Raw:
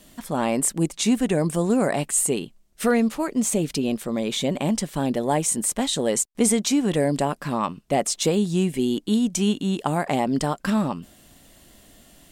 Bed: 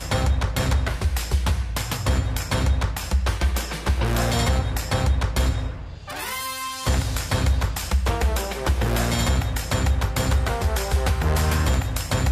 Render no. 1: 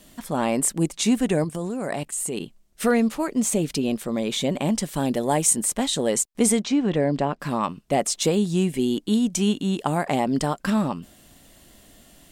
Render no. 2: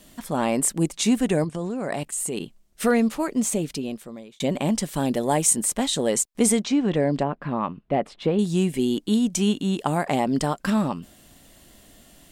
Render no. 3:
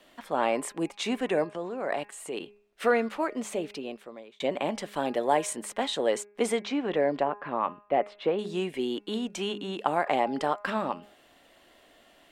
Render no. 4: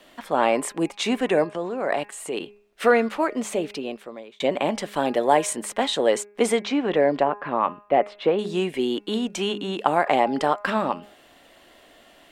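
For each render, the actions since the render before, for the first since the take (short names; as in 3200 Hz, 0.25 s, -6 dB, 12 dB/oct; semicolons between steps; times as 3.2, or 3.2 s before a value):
1.44–2.4 level quantiser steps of 14 dB; 4.82–5.53 bell 13000 Hz +5.5 dB 1.9 oct; 6.62–7.4 air absorption 160 m
1.45–1.92 LPF 6100 Hz; 3.33–4.4 fade out; 7.23–8.39 air absorption 430 m
three-band isolator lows -19 dB, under 350 Hz, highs -17 dB, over 3600 Hz; de-hum 205.8 Hz, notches 13
gain +6 dB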